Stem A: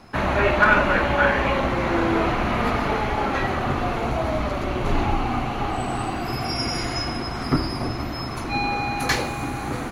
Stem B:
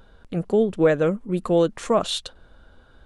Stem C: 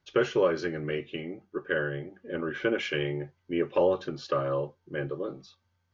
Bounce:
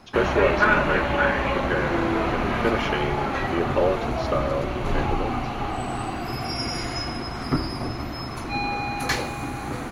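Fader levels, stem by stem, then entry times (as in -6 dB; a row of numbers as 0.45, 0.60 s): -2.5 dB, off, +2.0 dB; 0.00 s, off, 0.00 s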